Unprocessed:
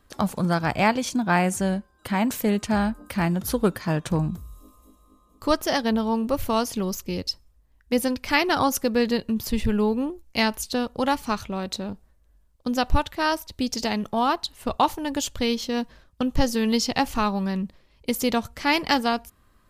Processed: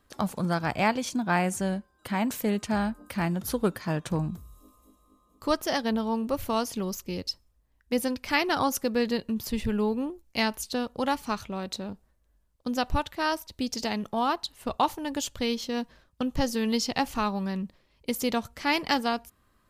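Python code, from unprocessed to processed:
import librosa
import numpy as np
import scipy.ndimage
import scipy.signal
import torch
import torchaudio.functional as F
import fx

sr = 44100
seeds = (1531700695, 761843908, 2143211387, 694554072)

y = fx.low_shelf(x, sr, hz=62.0, db=-6.5)
y = y * librosa.db_to_amplitude(-4.0)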